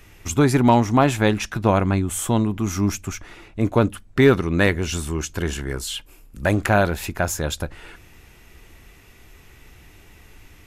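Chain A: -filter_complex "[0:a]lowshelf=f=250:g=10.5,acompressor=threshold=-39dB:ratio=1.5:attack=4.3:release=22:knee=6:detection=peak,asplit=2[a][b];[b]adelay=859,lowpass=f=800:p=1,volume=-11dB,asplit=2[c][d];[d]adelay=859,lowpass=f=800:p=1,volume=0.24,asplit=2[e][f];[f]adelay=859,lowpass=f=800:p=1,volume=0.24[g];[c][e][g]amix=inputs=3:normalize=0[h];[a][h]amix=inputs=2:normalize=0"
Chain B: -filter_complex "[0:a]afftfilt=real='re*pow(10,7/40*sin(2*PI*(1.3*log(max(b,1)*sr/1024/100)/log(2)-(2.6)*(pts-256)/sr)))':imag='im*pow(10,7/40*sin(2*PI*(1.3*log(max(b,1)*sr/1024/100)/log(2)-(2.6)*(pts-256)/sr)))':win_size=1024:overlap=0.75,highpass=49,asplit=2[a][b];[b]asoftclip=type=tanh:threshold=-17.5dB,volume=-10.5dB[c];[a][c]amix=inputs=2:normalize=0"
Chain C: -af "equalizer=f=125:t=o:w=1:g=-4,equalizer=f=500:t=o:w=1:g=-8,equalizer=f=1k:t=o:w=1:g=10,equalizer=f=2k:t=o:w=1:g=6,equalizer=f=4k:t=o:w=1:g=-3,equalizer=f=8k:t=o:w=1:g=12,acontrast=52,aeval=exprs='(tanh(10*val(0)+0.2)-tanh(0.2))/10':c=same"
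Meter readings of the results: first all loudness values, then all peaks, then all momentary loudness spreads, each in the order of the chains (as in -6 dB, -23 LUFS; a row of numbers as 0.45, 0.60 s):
-25.5, -19.0, -23.0 LUFS; -9.0, -2.5, -18.5 dBFS; 21, 12, 18 LU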